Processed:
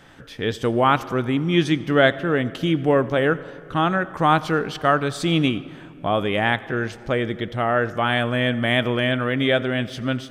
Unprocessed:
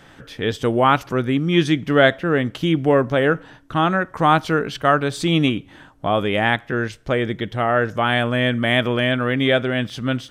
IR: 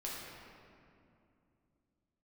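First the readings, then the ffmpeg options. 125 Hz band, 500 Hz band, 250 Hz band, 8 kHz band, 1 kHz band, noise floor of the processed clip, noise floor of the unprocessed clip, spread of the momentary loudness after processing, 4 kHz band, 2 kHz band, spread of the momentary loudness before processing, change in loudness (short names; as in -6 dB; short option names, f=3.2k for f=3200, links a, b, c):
-2.0 dB, -2.0 dB, -2.0 dB, -2.0 dB, -2.0 dB, -42 dBFS, -48 dBFS, 8 LU, -2.0 dB, -2.0 dB, 8 LU, -2.0 dB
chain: -filter_complex "[0:a]asplit=2[a][b];[1:a]atrim=start_sample=2205,adelay=86[c];[b][c]afir=irnorm=-1:irlink=0,volume=-18.5dB[d];[a][d]amix=inputs=2:normalize=0,volume=-2dB"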